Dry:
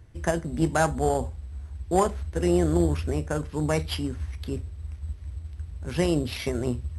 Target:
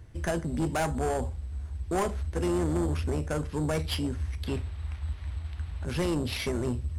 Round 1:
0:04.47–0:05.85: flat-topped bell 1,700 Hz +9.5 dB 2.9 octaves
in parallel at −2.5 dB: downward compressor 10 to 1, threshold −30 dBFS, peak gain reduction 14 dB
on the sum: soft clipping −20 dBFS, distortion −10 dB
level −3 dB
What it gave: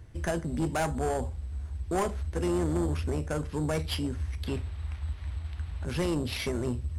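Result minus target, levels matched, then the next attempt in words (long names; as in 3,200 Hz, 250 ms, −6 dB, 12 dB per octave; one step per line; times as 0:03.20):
downward compressor: peak gain reduction +6 dB
0:04.47–0:05.85: flat-topped bell 1,700 Hz +9.5 dB 2.9 octaves
in parallel at −2.5 dB: downward compressor 10 to 1, threshold −23.5 dBFS, peak gain reduction 8 dB
on the sum: soft clipping −20 dBFS, distortion −9 dB
level −3 dB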